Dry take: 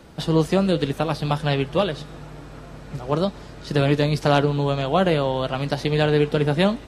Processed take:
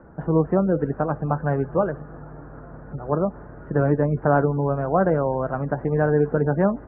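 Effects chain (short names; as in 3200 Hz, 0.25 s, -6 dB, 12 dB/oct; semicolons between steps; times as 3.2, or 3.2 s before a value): spectral gate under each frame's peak -30 dB strong; elliptic low-pass 1600 Hz, stop band 60 dB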